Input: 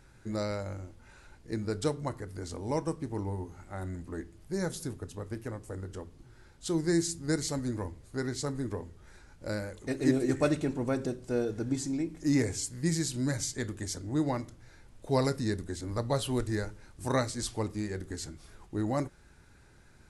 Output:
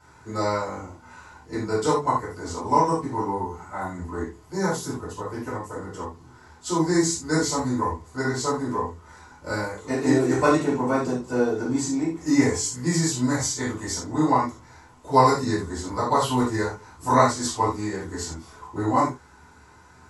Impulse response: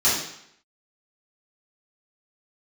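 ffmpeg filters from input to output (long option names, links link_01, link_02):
-filter_complex "[0:a]equalizer=frequency=980:width=1.9:gain=14[link_01];[1:a]atrim=start_sample=2205,afade=type=out:start_time=0.16:duration=0.01,atrim=end_sample=7497,asetrate=48510,aresample=44100[link_02];[link_01][link_02]afir=irnorm=-1:irlink=0,volume=-9dB"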